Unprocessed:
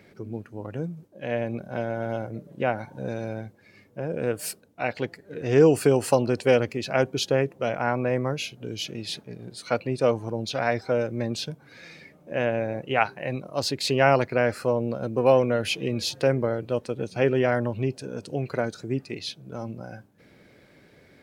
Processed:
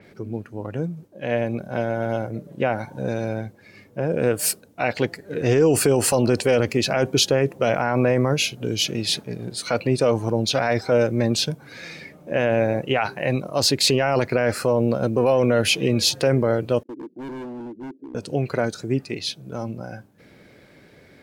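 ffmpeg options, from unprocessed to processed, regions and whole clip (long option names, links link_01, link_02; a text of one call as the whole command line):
ffmpeg -i in.wav -filter_complex "[0:a]asettb=1/sr,asplit=3[link_01][link_02][link_03];[link_01]atrim=end=16.834[link_04];[link_02]atrim=start=16.83:end=18.15,asetpts=PTS-STARTPTS,afade=type=in:duration=0.004:curve=qsin,afade=type=out:start_time=1.316:duration=0.004:curve=qsin,agate=range=-12dB:threshold=-45dB:ratio=16:release=100:detection=peak,asuperpass=centerf=300:order=4:qfactor=3.1,asoftclip=type=hard:threshold=-38dB[link_05];[link_03]atrim=start=18.146[link_06];[link_04][link_05]acrossfade=duration=0.004:curve1=hsin:curve2=qsin[link_07];[link_07][link_06]acrossfade=duration=0.004:curve1=qsin:curve2=hsin,dynaudnorm=framelen=420:gausssize=21:maxgain=11.5dB,alimiter=limit=-13.5dB:level=0:latency=1:release=26,adynamicequalizer=threshold=0.00794:dfrequency=4800:dqfactor=0.7:tfrequency=4800:tqfactor=0.7:attack=5:release=100:ratio=0.375:range=2:mode=boostabove:tftype=highshelf,volume=4.5dB" out.wav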